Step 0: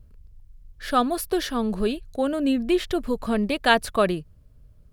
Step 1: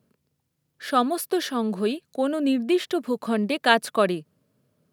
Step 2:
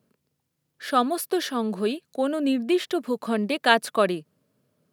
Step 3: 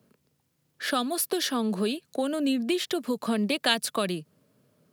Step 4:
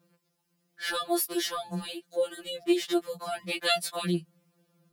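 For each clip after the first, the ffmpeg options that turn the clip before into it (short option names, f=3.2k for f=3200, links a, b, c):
-af "highpass=f=170:w=0.5412,highpass=f=170:w=1.3066"
-af "lowshelf=f=100:g=-8.5"
-filter_complex "[0:a]acrossover=split=170|3000[a][b][c];[b]acompressor=threshold=-31dB:ratio=6[d];[a][d][c]amix=inputs=3:normalize=0,volume=4.5dB"
-af "afftfilt=real='re*2.83*eq(mod(b,8),0)':imag='im*2.83*eq(mod(b,8),0)':win_size=2048:overlap=0.75"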